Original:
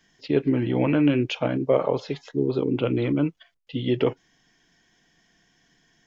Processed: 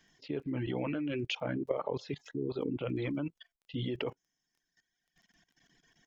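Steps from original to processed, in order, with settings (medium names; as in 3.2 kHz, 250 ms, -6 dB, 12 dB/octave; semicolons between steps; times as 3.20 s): reverb removal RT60 1.5 s; level held to a coarse grid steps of 17 dB; crackle 12 per s -56 dBFS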